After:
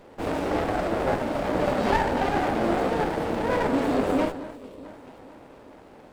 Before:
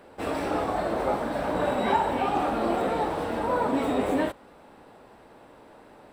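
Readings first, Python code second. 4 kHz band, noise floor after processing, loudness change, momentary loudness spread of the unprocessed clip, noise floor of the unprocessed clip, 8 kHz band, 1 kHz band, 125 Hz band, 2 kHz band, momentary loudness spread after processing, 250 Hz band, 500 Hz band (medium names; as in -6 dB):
+2.0 dB, -49 dBFS, +1.5 dB, 4 LU, -52 dBFS, +2.0 dB, 0.0 dB, +5.0 dB, +3.5 dB, 15 LU, +2.5 dB, +2.0 dB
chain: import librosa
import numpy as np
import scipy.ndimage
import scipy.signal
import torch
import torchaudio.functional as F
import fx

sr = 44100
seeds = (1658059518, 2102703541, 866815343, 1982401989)

y = fx.echo_alternate(x, sr, ms=220, hz=930.0, feedback_pct=70, wet_db=-13.0)
y = fx.spec_box(y, sr, start_s=4.56, length_s=0.28, low_hz=660.0, high_hz=2300.0, gain_db=-12)
y = fx.running_max(y, sr, window=17)
y = y * 10.0 ** (2.5 / 20.0)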